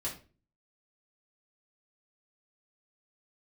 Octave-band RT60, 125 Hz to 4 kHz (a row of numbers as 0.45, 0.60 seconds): 0.60, 0.50, 0.40, 0.30, 0.30, 0.30 seconds